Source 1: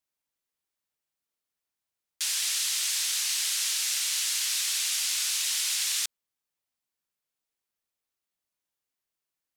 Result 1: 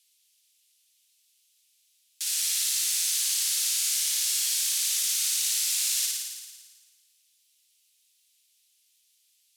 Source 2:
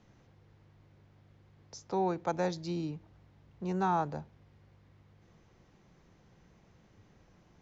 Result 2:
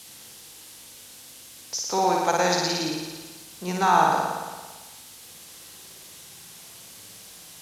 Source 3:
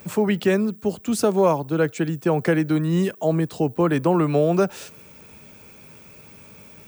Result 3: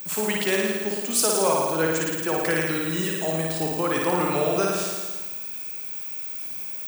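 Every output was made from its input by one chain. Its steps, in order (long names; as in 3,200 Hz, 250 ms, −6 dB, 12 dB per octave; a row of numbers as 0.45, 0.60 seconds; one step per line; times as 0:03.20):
delay that plays each chunk backwards 141 ms, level −13.5 dB
spectral tilt +3.5 dB per octave
flutter between parallel walls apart 9.6 metres, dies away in 1.4 s
noise in a band 2,700–13,000 Hz −56 dBFS
loudness normalisation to −24 LKFS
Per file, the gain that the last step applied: −11.5, +9.5, −3.5 decibels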